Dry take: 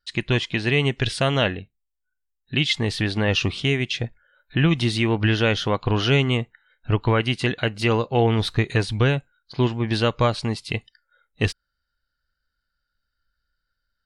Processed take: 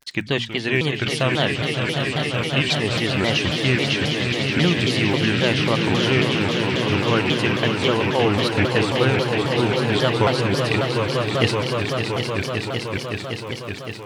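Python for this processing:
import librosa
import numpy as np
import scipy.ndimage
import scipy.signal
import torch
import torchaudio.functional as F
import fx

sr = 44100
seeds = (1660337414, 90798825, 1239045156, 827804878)

p1 = scipy.signal.sosfilt(scipy.signal.butter(2, 120.0, 'highpass', fs=sr, output='sos'), x)
p2 = fx.hum_notches(p1, sr, base_hz=60, count=4)
p3 = fx.rider(p2, sr, range_db=10, speed_s=0.5)
p4 = p2 + (p3 * librosa.db_to_amplitude(2.5))
p5 = fx.dmg_crackle(p4, sr, seeds[0], per_s=27.0, level_db=-25.0)
p6 = p5 + fx.echo_swell(p5, sr, ms=189, loudest=5, wet_db=-7.5, dry=0)
p7 = fx.vibrato_shape(p6, sr, shape='saw_down', rate_hz=3.7, depth_cents=250.0)
y = p7 * librosa.db_to_amplitude(-7.0)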